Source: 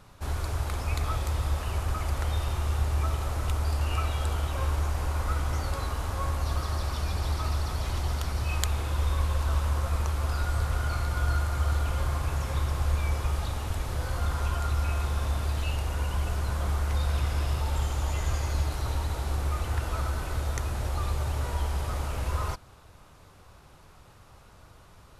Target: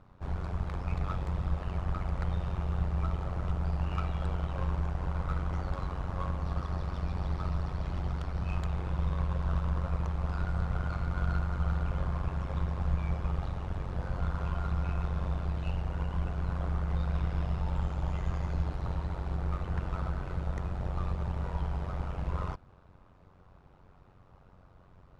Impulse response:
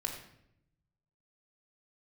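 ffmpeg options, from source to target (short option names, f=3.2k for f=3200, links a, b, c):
-af "tremolo=f=92:d=0.788,adynamicsmooth=sensitivity=1:basefreq=1.3k,highshelf=f=3.4k:g=12"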